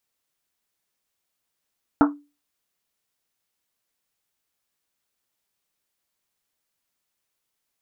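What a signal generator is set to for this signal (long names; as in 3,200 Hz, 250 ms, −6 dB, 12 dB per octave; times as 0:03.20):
drum after Risset, pitch 290 Hz, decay 0.30 s, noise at 1,100 Hz, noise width 630 Hz, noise 30%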